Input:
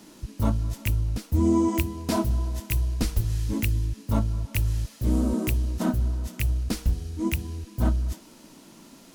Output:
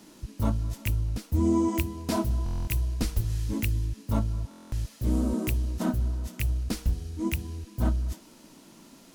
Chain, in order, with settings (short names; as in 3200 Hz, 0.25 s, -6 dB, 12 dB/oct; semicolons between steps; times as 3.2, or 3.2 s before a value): stuck buffer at 2.44/4.49, samples 1024, times 9; gain -2.5 dB